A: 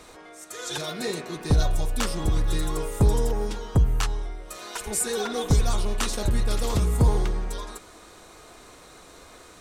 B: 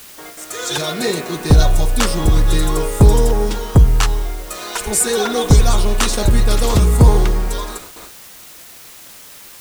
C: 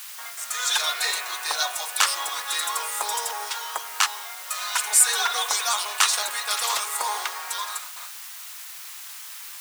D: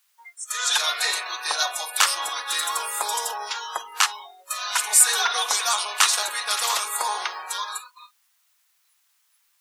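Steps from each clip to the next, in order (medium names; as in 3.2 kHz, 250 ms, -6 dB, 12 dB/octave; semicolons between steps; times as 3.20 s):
gate with hold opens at -36 dBFS; in parallel at -11 dB: word length cut 6-bit, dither triangular; on the sum: trim +8 dB
high-pass 900 Hz 24 dB/octave
spectral noise reduction 29 dB; trim +1.5 dB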